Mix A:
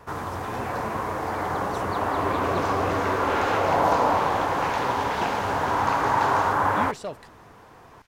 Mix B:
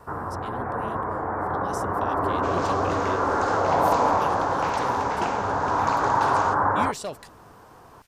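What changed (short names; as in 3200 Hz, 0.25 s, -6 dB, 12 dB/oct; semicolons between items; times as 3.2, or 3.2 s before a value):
first sound: add steep low-pass 1600 Hz 36 dB/oct; second sound -4.5 dB; master: add high shelf 4200 Hz +11.5 dB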